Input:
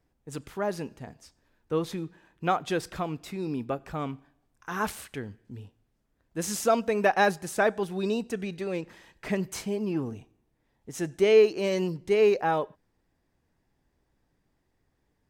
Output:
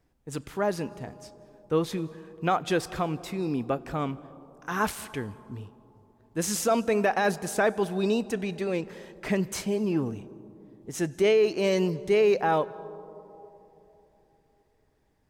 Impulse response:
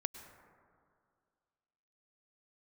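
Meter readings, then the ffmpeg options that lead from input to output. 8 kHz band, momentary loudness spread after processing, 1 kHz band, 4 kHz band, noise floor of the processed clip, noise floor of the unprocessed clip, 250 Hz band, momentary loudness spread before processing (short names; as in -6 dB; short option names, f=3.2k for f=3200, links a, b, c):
+3.0 dB, 19 LU, +0.5 dB, +1.5 dB, -68 dBFS, -74 dBFS, +2.5 dB, 19 LU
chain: -filter_complex "[0:a]alimiter=limit=-17.5dB:level=0:latency=1:release=20,asplit=2[a][b];[1:a]atrim=start_sample=2205,asetrate=26901,aresample=44100[c];[b][c]afir=irnorm=-1:irlink=0,volume=-9.5dB[d];[a][d]amix=inputs=2:normalize=0"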